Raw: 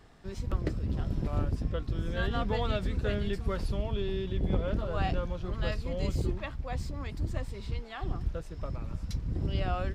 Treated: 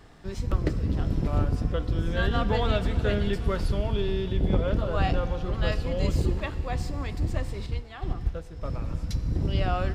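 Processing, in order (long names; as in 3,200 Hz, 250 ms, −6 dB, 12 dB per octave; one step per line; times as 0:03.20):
feedback delay network reverb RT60 3.7 s, high-frequency decay 0.95×, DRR 11 dB
0:07.66–0:08.65: expander for the loud parts 1.5 to 1, over −39 dBFS
level +5 dB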